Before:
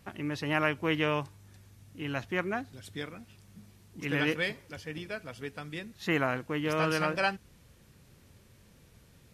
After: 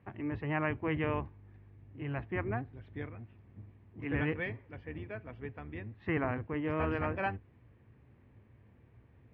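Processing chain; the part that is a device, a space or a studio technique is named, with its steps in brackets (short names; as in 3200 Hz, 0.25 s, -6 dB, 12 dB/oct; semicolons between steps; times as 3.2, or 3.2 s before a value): sub-octave bass pedal (octaver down 1 oct, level +1 dB; speaker cabinet 82–2100 Hz, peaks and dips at 110 Hz +6 dB, 170 Hz -8 dB, 550 Hz -4 dB, 1400 Hz -7 dB); gain -2.5 dB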